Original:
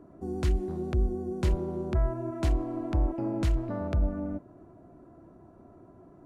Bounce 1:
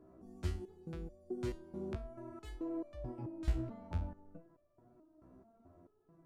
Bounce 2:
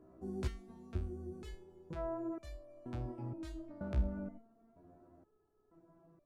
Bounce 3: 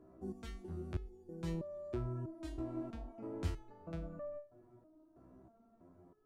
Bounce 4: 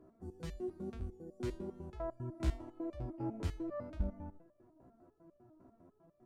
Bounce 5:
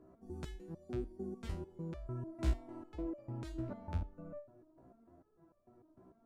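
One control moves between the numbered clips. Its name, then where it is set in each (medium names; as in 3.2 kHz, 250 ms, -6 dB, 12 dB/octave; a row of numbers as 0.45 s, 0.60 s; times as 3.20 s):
resonator arpeggio, rate: 4.6 Hz, 2.1 Hz, 3.1 Hz, 10 Hz, 6.7 Hz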